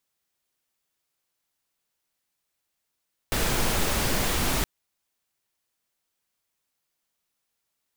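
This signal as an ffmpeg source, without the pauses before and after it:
-f lavfi -i "anoisesrc=c=pink:a=0.305:d=1.32:r=44100:seed=1"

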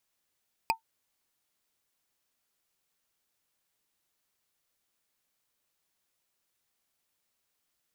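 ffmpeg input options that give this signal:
-f lavfi -i "aevalsrc='0.119*pow(10,-3*t/0.11)*sin(2*PI*901*t)+0.0944*pow(10,-3*t/0.033)*sin(2*PI*2484.1*t)+0.075*pow(10,-3*t/0.015)*sin(2*PI*4869*t)+0.0596*pow(10,-3*t/0.008)*sin(2*PI*8048.6*t)+0.0473*pow(10,-3*t/0.005)*sin(2*PI*12019.3*t)':d=0.45:s=44100"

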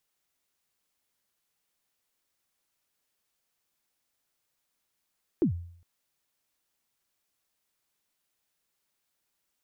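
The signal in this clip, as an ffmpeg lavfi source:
-f lavfi -i "aevalsrc='0.126*pow(10,-3*t/0.6)*sin(2*PI*(390*0.103/log(86/390)*(exp(log(86/390)*min(t,0.103)/0.103)-1)+86*max(t-0.103,0)))':d=0.41:s=44100"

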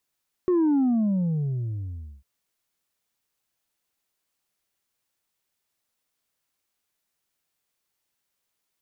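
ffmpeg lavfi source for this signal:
-f lavfi -i "aevalsrc='0.119*clip((1.75-t)/1.48,0,1)*tanh(1.33*sin(2*PI*370*1.75/log(65/370)*(exp(log(65/370)*t/1.75)-1)))/tanh(1.33)':d=1.75:s=44100"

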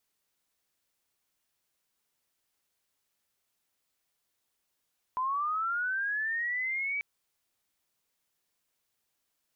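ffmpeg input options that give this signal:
-f lavfi -i "aevalsrc='pow(10,(-27.5-2*t/1.84)/20)*sin(2*PI*(1000*t+1300*t*t/(2*1.84)))':d=1.84:s=44100"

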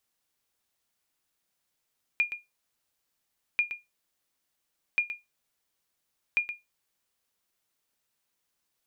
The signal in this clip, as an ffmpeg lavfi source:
-f lavfi -i "aevalsrc='0.15*(sin(2*PI*2420*mod(t,1.39))*exp(-6.91*mod(t,1.39)/0.19)+0.299*sin(2*PI*2420*max(mod(t,1.39)-0.12,0))*exp(-6.91*max(mod(t,1.39)-0.12,0)/0.19))':d=5.56:s=44100"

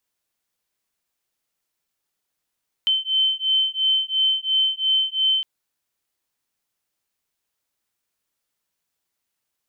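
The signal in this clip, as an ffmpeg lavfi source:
-f lavfi -i "aevalsrc='0.0891*(sin(2*PI*3080*t)+sin(2*PI*3082.9*t))':d=2.56:s=44100"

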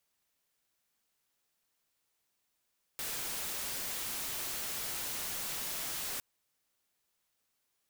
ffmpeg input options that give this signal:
-f lavfi -i "anoisesrc=c=white:a=0.0218:d=3.21:r=44100:seed=1"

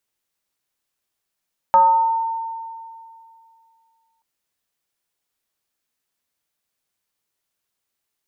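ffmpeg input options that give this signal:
-f lavfi -i "aevalsrc='0.398*pow(10,-3*t/2.48)*sin(2*PI*907*t+0.51*pow(10,-3*t/1.11)*sin(2*PI*0.39*907*t))':d=2.48:s=44100"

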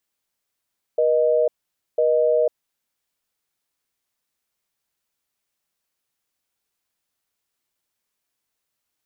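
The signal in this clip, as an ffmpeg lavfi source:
-f lavfi -i "aevalsrc='0.126*(sin(2*PI*480*t)+sin(2*PI*620*t))*clip(min(mod(t,1),0.5-mod(t,1))/0.005,0,1)':d=1.86:s=44100"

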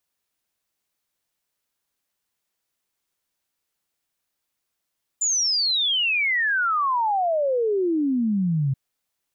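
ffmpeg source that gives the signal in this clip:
-f lavfi -i "aevalsrc='0.112*clip(min(t,3.53-t)/0.01,0,1)*sin(2*PI*7200*3.53/log(130/7200)*(exp(log(130/7200)*t/3.53)-1))':d=3.53:s=44100"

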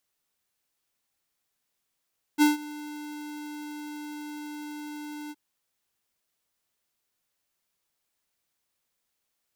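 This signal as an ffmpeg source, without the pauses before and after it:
-f lavfi -i "aevalsrc='0.133*(2*lt(mod(298*t,1),0.5)-1)':d=2.967:s=44100,afade=t=in:d=0.039,afade=t=out:st=0.039:d=0.151:silence=0.0891,afade=t=out:st=2.93:d=0.037"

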